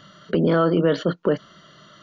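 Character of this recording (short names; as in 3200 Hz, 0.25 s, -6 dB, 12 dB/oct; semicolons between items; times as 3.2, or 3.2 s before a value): noise floor -51 dBFS; spectral tilt -6.5 dB/oct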